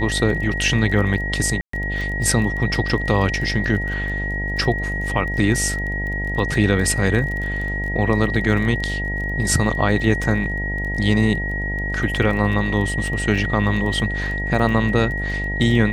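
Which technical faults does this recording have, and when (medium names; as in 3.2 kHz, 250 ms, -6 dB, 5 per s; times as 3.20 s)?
buzz 50 Hz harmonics 18 -26 dBFS
crackle 20 per s -28 dBFS
whine 1.9 kHz -25 dBFS
1.61–1.73 s: dropout 124 ms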